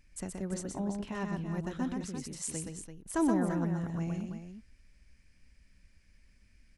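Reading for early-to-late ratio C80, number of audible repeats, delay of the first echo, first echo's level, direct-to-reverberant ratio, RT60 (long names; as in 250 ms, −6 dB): no reverb audible, 3, 124 ms, −4.0 dB, no reverb audible, no reverb audible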